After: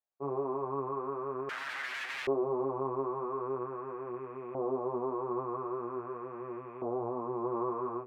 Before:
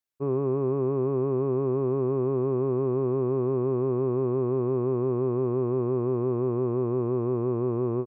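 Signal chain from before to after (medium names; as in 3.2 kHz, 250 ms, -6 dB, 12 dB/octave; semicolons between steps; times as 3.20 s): chorus voices 4, 0.48 Hz, delay 18 ms, depth 4.3 ms; 1.49–2.27 s: integer overflow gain 34.5 dB; LFO band-pass saw up 0.44 Hz 680–2200 Hz; trim +8 dB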